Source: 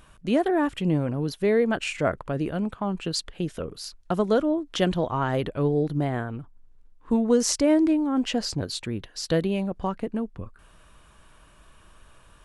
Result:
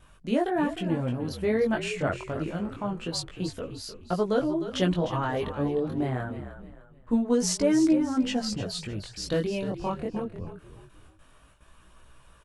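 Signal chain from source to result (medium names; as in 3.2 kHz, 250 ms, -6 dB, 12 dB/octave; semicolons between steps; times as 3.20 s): gate with hold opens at -44 dBFS; chorus voices 2, 0.25 Hz, delay 20 ms, depth 4.5 ms; frequency-shifting echo 304 ms, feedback 35%, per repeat -47 Hz, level -11 dB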